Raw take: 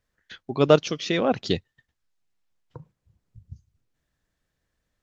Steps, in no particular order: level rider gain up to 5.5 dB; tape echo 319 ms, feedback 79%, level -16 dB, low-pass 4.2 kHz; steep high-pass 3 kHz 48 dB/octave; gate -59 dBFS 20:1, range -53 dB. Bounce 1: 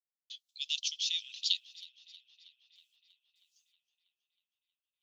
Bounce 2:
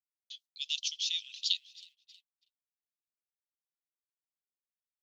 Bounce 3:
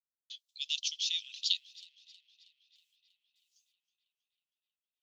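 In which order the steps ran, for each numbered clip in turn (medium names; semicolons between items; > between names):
gate > level rider > steep high-pass > tape echo; level rider > tape echo > steep high-pass > gate; gate > level rider > tape echo > steep high-pass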